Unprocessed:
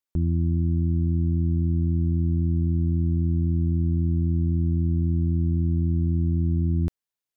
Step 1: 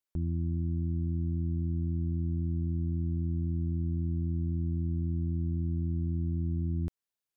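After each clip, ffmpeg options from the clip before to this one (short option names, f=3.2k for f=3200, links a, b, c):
-af "alimiter=limit=-23dB:level=0:latency=1:release=113,volume=-2.5dB"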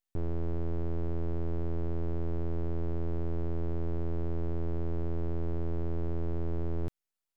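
-af "aeval=exprs='abs(val(0))':c=same,volume=1.5dB"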